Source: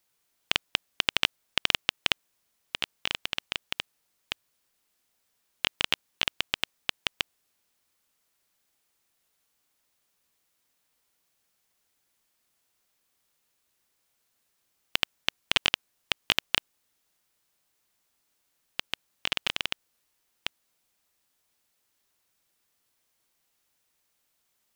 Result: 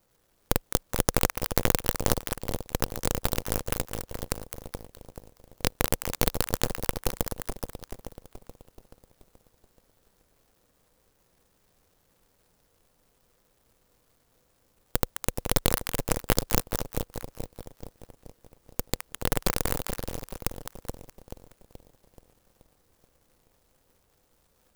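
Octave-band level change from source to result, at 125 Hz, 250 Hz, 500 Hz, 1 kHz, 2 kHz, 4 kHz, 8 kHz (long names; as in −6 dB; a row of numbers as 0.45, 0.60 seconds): +17.5, +14.0, +13.0, +5.0, −5.5, −9.0, +10.5 decibels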